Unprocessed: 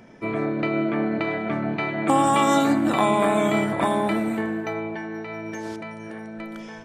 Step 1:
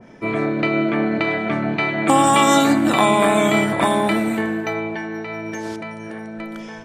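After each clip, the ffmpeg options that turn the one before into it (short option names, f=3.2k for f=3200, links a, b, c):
-af "adynamicequalizer=threshold=0.0158:dfrequency=1800:dqfactor=0.7:tfrequency=1800:tqfactor=0.7:attack=5:release=100:ratio=0.375:range=2.5:mode=boostabove:tftype=highshelf,volume=4dB"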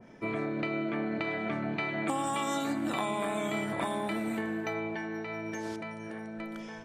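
-af "acompressor=threshold=-21dB:ratio=4,volume=-8.5dB"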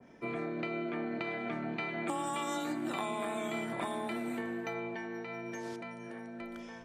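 -af "afreqshift=19,volume=-4dB"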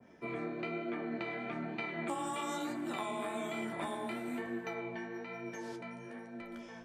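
-af "flanger=delay=8.4:depth=9:regen=33:speed=1.1:shape=triangular,volume=1.5dB"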